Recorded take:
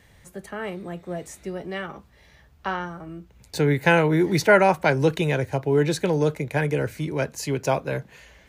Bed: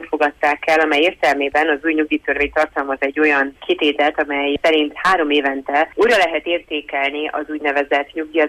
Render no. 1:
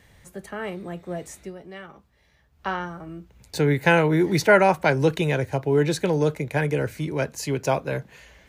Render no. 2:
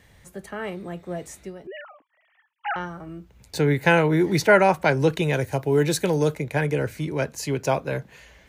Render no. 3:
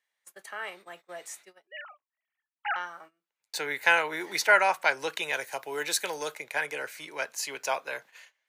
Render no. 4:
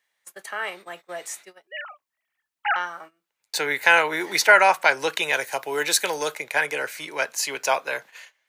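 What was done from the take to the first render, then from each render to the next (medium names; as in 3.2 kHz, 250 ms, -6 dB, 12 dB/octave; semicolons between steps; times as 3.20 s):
1.39–2.67 s: dip -8.5 dB, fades 0.16 s
1.67–2.76 s: formants replaced by sine waves; 5.33–6.35 s: treble shelf 7.4 kHz +11.5 dB
high-pass 990 Hz 12 dB/octave; gate -49 dBFS, range -23 dB
trim +7.5 dB; peak limiter -3 dBFS, peak gain reduction 3 dB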